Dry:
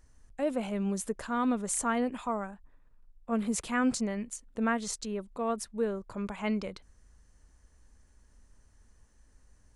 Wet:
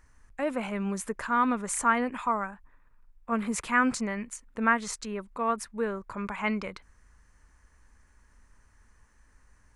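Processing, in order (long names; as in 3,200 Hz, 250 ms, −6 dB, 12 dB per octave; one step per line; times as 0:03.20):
flat-topped bell 1,500 Hz +8.5 dB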